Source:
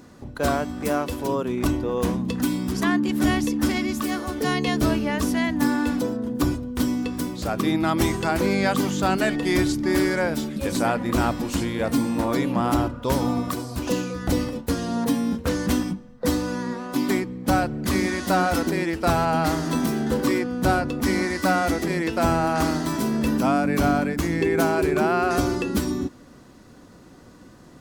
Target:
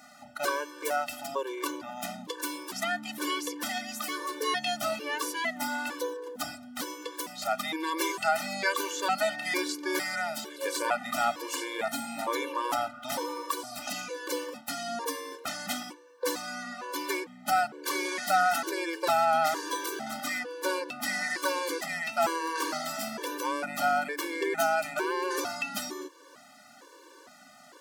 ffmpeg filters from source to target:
ffmpeg -i in.wav -filter_complex "[0:a]asplit=2[link_01][link_02];[link_02]acompressor=threshold=-36dB:ratio=6,volume=-1dB[link_03];[link_01][link_03]amix=inputs=2:normalize=0,highpass=630,afftfilt=real='re*gt(sin(2*PI*1.1*pts/sr)*(1-2*mod(floor(b*sr/1024/300),2)),0)':imag='im*gt(sin(2*PI*1.1*pts/sr)*(1-2*mod(floor(b*sr/1024/300),2)),0)':win_size=1024:overlap=0.75" out.wav

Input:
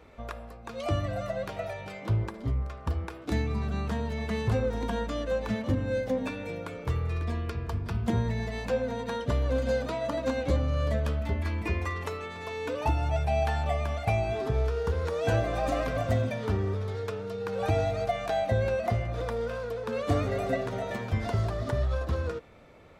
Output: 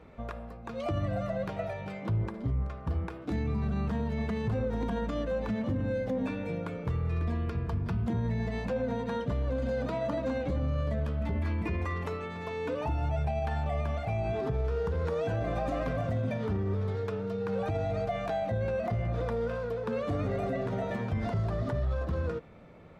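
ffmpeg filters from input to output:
ffmpeg -i in.wav -af "equalizer=frequency=170:width=1.7:gain=7.5,alimiter=limit=-23dB:level=0:latency=1:release=35,highshelf=frequency=3700:gain=-10.5" out.wav

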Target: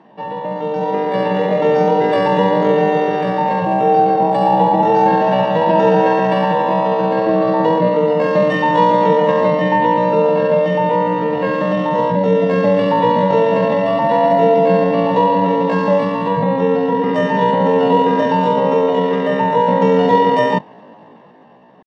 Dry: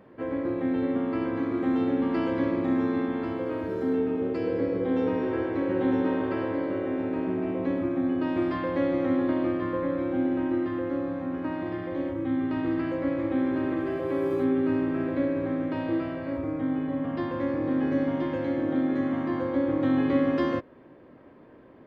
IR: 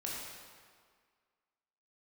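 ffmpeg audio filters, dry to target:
-af "highpass=frequency=100:width=0.5412,highpass=frequency=100:width=1.3066,aemphasis=mode=reproduction:type=riaa,aecho=1:1:1.9:0.47,dynaudnorm=framelen=120:gausssize=17:maxgain=11dB,asetrate=76340,aresample=44100,atempo=0.577676,volume=1dB"

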